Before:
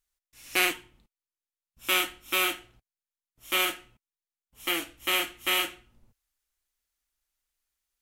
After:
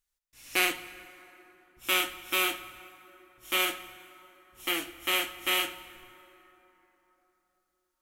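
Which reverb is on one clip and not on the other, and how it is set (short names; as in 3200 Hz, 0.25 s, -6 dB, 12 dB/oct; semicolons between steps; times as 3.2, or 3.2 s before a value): plate-style reverb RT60 3.8 s, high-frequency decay 0.5×, DRR 13 dB; gain -1.5 dB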